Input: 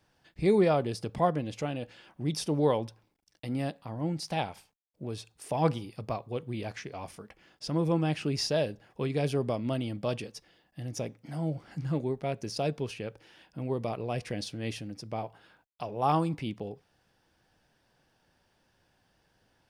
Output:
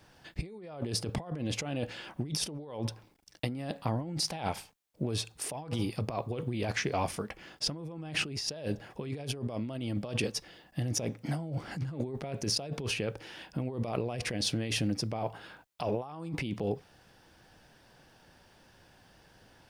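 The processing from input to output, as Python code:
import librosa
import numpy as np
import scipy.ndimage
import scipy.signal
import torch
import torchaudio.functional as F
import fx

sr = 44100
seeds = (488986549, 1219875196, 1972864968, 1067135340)

y = fx.over_compress(x, sr, threshold_db=-39.0, ratio=-1.0)
y = y * 10.0 ** (3.5 / 20.0)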